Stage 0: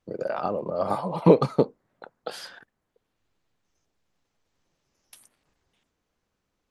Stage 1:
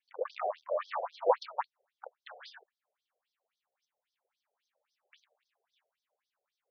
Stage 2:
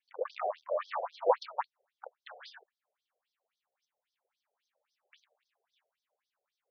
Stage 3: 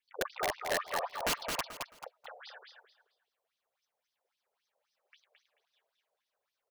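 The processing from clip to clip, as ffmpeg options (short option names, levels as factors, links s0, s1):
-af "equalizer=f=580:t=o:w=0.39:g=3,aeval=exprs='clip(val(0),-1,0.0335)':c=same,afftfilt=real='re*between(b*sr/1024,540*pow(4600/540,0.5+0.5*sin(2*PI*3.7*pts/sr))/1.41,540*pow(4600/540,0.5+0.5*sin(2*PI*3.7*pts/sr))*1.41)':imag='im*between(b*sr/1024,540*pow(4600/540,0.5+0.5*sin(2*PI*3.7*pts/sr))/1.41,540*pow(4600/540,0.5+0.5*sin(2*PI*3.7*pts/sr))*1.41)':win_size=1024:overlap=0.75"
-af anull
-af "aeval=exprs='(mod(17.8*val(0)+1,2)-1)/17.8':c=same,aecho=1:1:218|436|654:0.562|0.141|0.0351"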